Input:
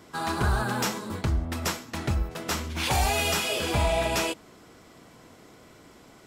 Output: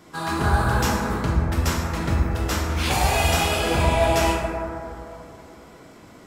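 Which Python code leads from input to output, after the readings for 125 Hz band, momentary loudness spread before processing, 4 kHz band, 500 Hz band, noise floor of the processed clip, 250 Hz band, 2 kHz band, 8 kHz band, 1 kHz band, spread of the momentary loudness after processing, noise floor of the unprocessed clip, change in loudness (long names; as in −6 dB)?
+7.0 dB, 7 LU, +2.5 dB, +6.0 dB, −47 dBFS, +6.5 dB, +4.5 dB, +2.5 dB, +6.5 dB, 12 LU, −53 dBFS, +5.0 dB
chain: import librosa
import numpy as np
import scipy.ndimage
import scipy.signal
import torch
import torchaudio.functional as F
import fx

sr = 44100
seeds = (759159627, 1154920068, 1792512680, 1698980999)

y = fx.rev_plate(x, sr, seeds[0], rt60_s=2.8, hf_ratio=0.25, predelay_ms=0, drr_db=-3.5)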